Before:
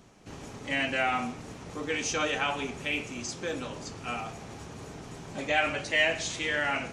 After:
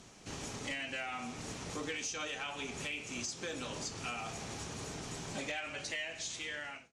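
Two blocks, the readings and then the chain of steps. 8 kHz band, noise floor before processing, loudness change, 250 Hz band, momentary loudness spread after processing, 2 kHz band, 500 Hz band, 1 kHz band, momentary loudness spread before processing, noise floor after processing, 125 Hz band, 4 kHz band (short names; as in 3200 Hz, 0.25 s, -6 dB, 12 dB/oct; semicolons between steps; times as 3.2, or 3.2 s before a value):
-2.5 dB, -45 dBFS, -10.0 dB, -8.0 dB, 5 LU, -11.0 dB, -11.0 dB, -11.5 dB, 17 LU, -55 dBFS, -5.5 dB, -7.0 dB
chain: ending faded out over 1.60 s; high shelf 2800 Hz +11 dB; compressor 16:1, threshold -34 dBFS, peak gain reduction 15.5 dB; hard clip -30 dBFS, distortion -21 dB; LPF 9600 Hz 12 dB/oct; gain -1.5 dB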